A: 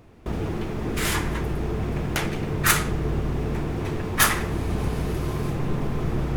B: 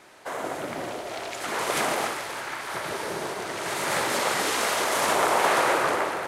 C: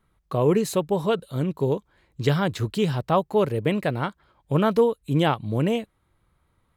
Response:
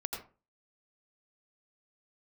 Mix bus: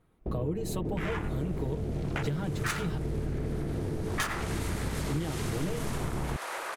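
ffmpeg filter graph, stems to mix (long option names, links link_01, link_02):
-filter_complex "[0:a]afwtdn=0.0398,adynamicsmooth=sensitivity=3.5:basefreq=3100,volume=-4.5dB,asplit=2[link_01][link_02];[link_02]volume=-8.5dB[link_03];[1:a]highpass=frequency=780:poles=1,acompressor=threshold=-34dB:ratio=6,adelay=850,afade=type=in:start_time=4.01:duration=0.34:silence=0.298538[link_04];[2:a]aecho=1:1:6.4:0.93,acrossover=split=420[link_05][link_06];[link_06]acompressor=threshold=-27dB:ratio=6[link_07];[link_05][link_07]amix=inputs=2:normalize=0,volume=-7dB,asplit=3[link_08][link_09][link_10];[link_08]atrim=end=2.98,asetpts=PTS-STARTPTS,afade=type=out:start_time=2.976:duration=0.004:curve=hsin[link_11];[link_09]atrim=start=2.98:end=5.02,asetpts=PTS-STARTPTS,volume=0[link_12];[link_10]atrim=start=5.02,asetpts=PTS-STARTPTS,afade=type=in:duration=0.004:curve=hsin[link_13];[link_11][link_12][link_13]concat=n=3:v=0:a=1[link_14];[3:a]atrim=start_sample=2205[link_15];[link_03][link_15]afir=irnorm=-1:irlink=0[link_16];[link_01][link_04][link_14][link_16]amix=inputs=4:normalize=0,highshelf=frequency=10000:gain=4,acompressor=threshold=-28dB:ratio=6"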